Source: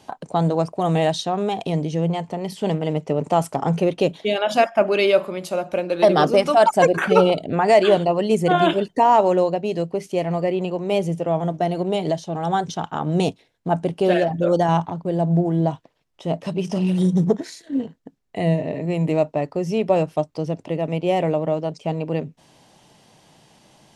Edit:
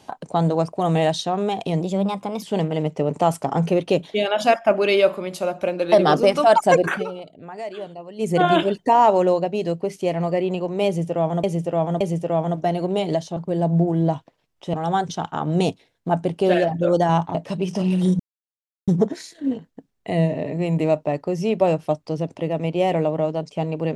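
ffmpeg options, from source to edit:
ffmpeg -i in.wav -filter_complex "[0:a]asplit=11[link_01][link_02][link_03][link_04][link_05][link_06][link_07][link_08][link_09][link_10][link_11];[link_01]atrim=end=1.814[link_12];[link_02]atrim=start=1.81:end=2.53,asetpts=PTS-STARTPTS,asetrate=51597,aresample=44100,atrim=end_sample=27138,asetpts=PTS-STARTPTS[link_13];[link_03]atrim=start=2.526:end=7.17,asetpts=PTS-STARTPTS,afade=type=out:start_time=4.474:duration=0.17:silence=0.133352[link_14];[link_04]atrim=start=7.17:end=8.26,asetpts=PTS-STARTPTS,volume=-17.5dB[link_15];[link_05]atrim=start=8.26:end=11.542,asetpts=PTS-STARTPTS,afade=type=in:duration=0.17:silence=0.133352[link_16];[link_06]atrim=start=10.968:end=11.542[link_17];[link_07]atrim=start=10.968:end=12.332[link_18];[link_08]atrim=start=14.938:end=16.312[link_19];[link_09]atrim=start=12.328:end=14.942[link_20];[link_10]atrim=start=16.308:end=17.16,asetpts=PTS-STARTPTS,afade=type=out:start_time=0.848:duration=0.004:curve=hsin,apad=pad_dur=0.68[link_21];[link_11]atrim=start=17.16,asetpts=PTS-STARTPTS,afade=type=in:duration=0.004:curve=hsin[link_22];[link_12][link_13]acrossfade=duration=0.004:curve1=hsin:curve2=hsin[link_23];[link_14][link_15][link_16]concat=n=3:v=0:a=1[link_24];[link_23][link_24]acrossfade=duration=0.004:curve1=hsin:curve2=hsin[link_25];[link_25][link_17]acrossfade=duration=0.004:curve1=hsin:curve2=hsin[link_26];[link_26][link_18]acrossfade=duration=0.004:curve1=hsin:curve2=hsin[link_27];[link_27][link_19]acrossfade=duration=0.004:curve1=hsin:curve2=hsin[link_28];[link_28][link_20]acrossfade=duration=0.004:curve1=hsin:curve2=hsin[link_29];[link_21][link_22]concat=n=2:v=0:a=1[link_30];[link_29][link_30]acrossfade=duration=0.004:curve1=hsin:curve2=hsin" out.wav

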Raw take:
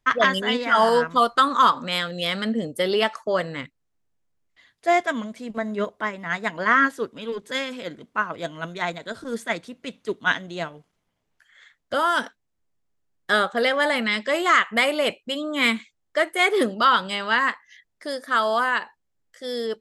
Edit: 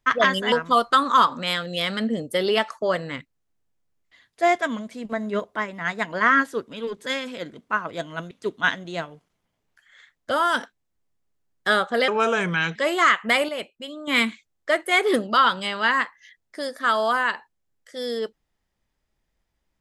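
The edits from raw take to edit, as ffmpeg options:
ffmpeg -i in.wav -filter_complex "[0:a]asplit=7[link_01][link_02][link_03][link_04][link_05][link_06][link_07];[link_01]atrim=end=0.522[link_08];[link_02]atrim=start=0.968:end=8.762[link_09];[link_03]atrim=start=9.938:end=13.714[link_10];[link_04]atrim=start=13.71:end=14.23,asetpts=PTS-STARTPTS,asetrate=33957,aresample=44100[link_11];[link_05]atrim=start=14.226:end=14.962[link_12];[link_06]atrim=start=14.958:end=15.552,asetpts=PTS-STARTPTS,volume=-8dB[link_13];[link_07]atrim=start=15.548[link_14];[link_08][link_09]acrossfade=duration=0.004:curve1=hsin:curve2=hsin[link_15];[link_15][link_10]acrossfade=duration=0.004:curve1=hsin:curve2=hsin[link_16];[link_16][link_11]acrossfade=duration=0.004:curve1=hsin:curve2=hsin[link_17];[link_17][link_12]acrossfade=duration=0.004:curve1=hsin:curve2=hsin[link_18];[link_18][link_13]acrossfade=duration=0.004:curve1=hsin:curve2=hsin[link_19];[link_19][link_14]acrossfade=duration=0.004:curve1=hsin:curve2=hsin" out.wav

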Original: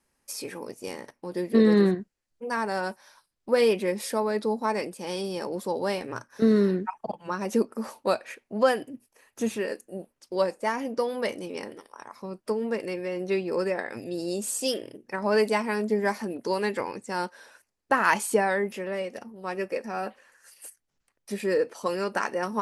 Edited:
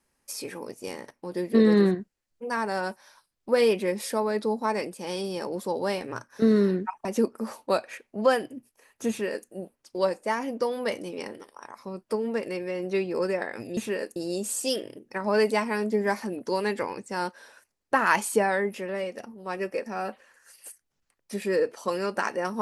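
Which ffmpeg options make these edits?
ffmpeg -i in.wav -filter_complex "[0:a]asplit=4[link_01][link_02][link_03][link_04];[link_01]atrim=end=7.052[link_05];[link_02]atrim=start=7.418:end=14.142[link_06];[link_03]atrim=start=9.458:end=9.852[link_07];[link_04]atrim=start=14.138[link_08];[link_05][link_06]acrossfade=duration=0.004:curve1=hsin:curve2=hsin[link_09];[link_09][link_07]acrossfade=duration=0.004:curve1=hsin:curve2=hsin[link_10];[link_10][link_08]acrossfade=duration=0.004:curve1=hsin:curve2=hsin" out.wav

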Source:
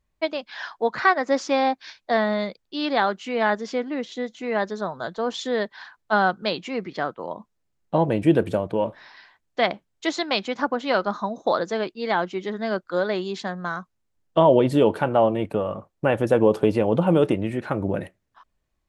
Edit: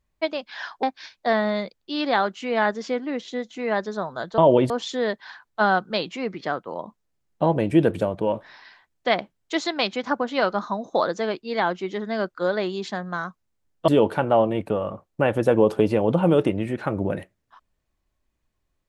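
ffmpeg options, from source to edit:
ffmpeg -i in.wav -filter_complex "[0:a]asplit=5[link_01][link_02][link_03][link_04][link_05];[link_01]atrim=end=0.832[link_06];[link_02]atrim=start=1.668:end=5.222[link_07];[link_03]atrim=start=14.398:end=14.722[link_08];[link_04]atrim=start=5.218:end=14.402[link_09];[link_05]atrim=start=14.718[link_10];[link_06][link_07]acrossfade=duration=0.004:curve1=hsin:curve2=hsin[link_11];[link_11][link_08]acrossfade=duration=0.004:curve1=hsin:curve2=hsin[link_12];[link_12][link_09]acrossfade=duration=0.004:curve1=hsin:curve2=hsin[link_13];[link_13][link_10]acrossfade=duration=0.004:curve1=hsin:curve2=hsin" out.wav

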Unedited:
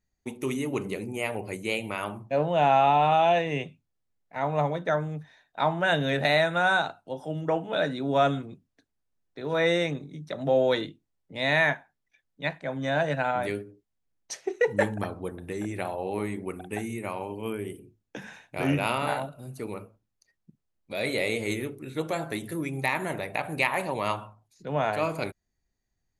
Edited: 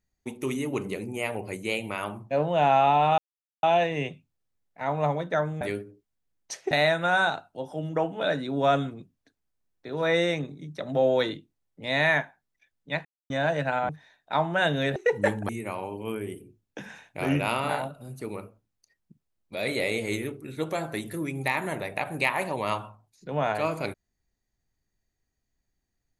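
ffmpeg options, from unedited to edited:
ffmpeg -i in.wav -filter_complex "[0:a]asplit=9[link_01][link_02][link_03][link_04][link_05][link_06][link_07][link_08][link_09];[link_01]atrim=end=3.18,asetpts=PTS-STARTPTS,afade=type=out:start_time=3.176:duration=0.004:curve=hsin,apad=pad_dur=0.45[link_10];[link_02]atrim=start=3.18:end=5.162,asetpts=PTS-STARTPTS,afade=type=in:duration=0.004:curve=hsin[link_11];[link_03]atrim=start=13.408:end=14.512[link_12];[link_04]atrim=start=6.228:end=12.57,asetpts=PTS-STARTPTS,afade=type=out:start_time=6.338:duration=0.004:curve=hsin[link_13];[link_05]atrim=start=12.57:end=12.82,asetpts=PTS-STARTPTS,volume=0[link_14];[link_06]atrim=start=12.82:end=13.412,asetpts=PTS-STARTPTS,afade=type=in:duration=0.004:curve=hsin[link_15];[link_07]atrim=start=5.158:end=6.232[link_16];[link_08]atrim=start=14.508:end=15.042[link_17];[link_09]atrim=start=16.868[link_18];[link_10][link_11]concat=n=2:v=0:a=1[link_19];[link_19][link_12]acrossfade=duration=0.004:curve1=hsin:curve2=hsin[link_20];[link_13][link_14][link_15]concat=n=3:v=0:a=1[link_21];[link_20][link_21]acrossfade=duration=0.004:curve1=hsin:curve2=hsin[link_22];[link_22][link_16]acrossfade=duration=0.004:curve1=hsin:curve2=hsin[link_23];[link_23][link_17]acrossfade=duration=0.004:curve1=hsin:curve2=hsin[link_24];[link_24][link_18]acrossfade=duration=0.004:curve1=hsin:curve2=hsin" out.wav

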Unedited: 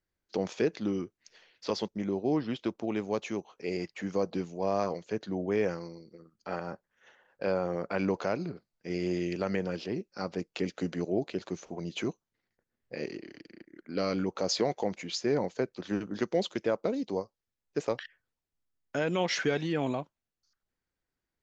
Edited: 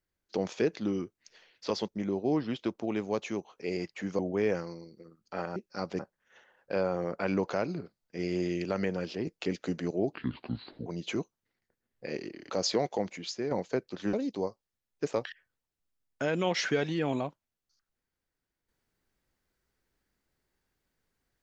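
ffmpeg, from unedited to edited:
ffmpeg -i in.wav -filter_complex "[0:a]asplit=10[link_01][link_02][link_03][link_04][link_05][link_06][link_07][link_08][link_09][link_10];[link_01]atrim=end=4.192[link_11];[link_02]atrim=start=5.328:end=6.702[link_12];[link_03]atrim=start=9.978:end=10.412[link_13];[link_04]atrim=start=6.698:end=9.982[link_14];[link_05]atrim=start=10.408:end=11.264[link_15];[link_06]atrim=start=11.26:end=11.75,asetpts=PTS-STARTPTS,asetrate=29106,aresample=44100[link_16];[link_07]atrim=start=11.746:end=13.392[link_17];[link_08]atrim=start=14.358:end=15.37,asetpts=PTS-STARTPTS,afade=type=out:start_time=0.502:duration=0.51:silence=0.446684[link_18];[link_09]atrim=start=15.37:end=15.992,asetpts=PTS-STARTPTS,afade=type=in:duration=0.004:curve=hsin:silence=0.446684[link_19];[link_10]atrim=start=16.868[link_20];[link_11][link_12]acrossfade=duration=0.004:curve1=hsin:curve2=hsin[link_21];[link_21][link_13]acrossfade=duration=0.004:curve1=hsin:curve2=hsin[link_22];[link_22][link_14]acrossfade=duration=0.004:curve1=hsin:curve2=hsin[link_23];[link_23][link_15]acrossfade=duration=0.004:curve1=hsin:curve2=hsin[link_24];[link_24][link_16]acrossfade=duration=0.004:curve1=hsin:curve2=hsin[link_25];[link_25][link_17]acrossfade=duration=0.004:curve1=hsin:curve2=hsin[link_26];[link_18][link_19]concat=n=2:v=0:a=1[link_27];[link_26][link_27]acrossfade=duration=0.004:curve1=hsin:curve2=hsin[link_28];[link_28][link_20]acrossfade=duration=0.004:curve1=hsin:curve2=hsin" out.wav

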